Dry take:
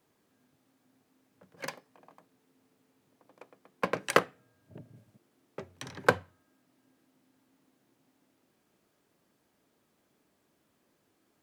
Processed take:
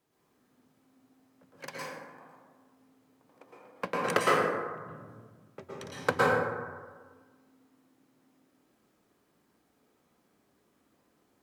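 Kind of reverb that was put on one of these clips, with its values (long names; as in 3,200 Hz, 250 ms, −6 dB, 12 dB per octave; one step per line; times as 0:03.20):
dense smooth reverb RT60 1.5 s, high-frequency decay 0.4×, pre-delay 100 ms, DRR −6.5 dB
level −5 dB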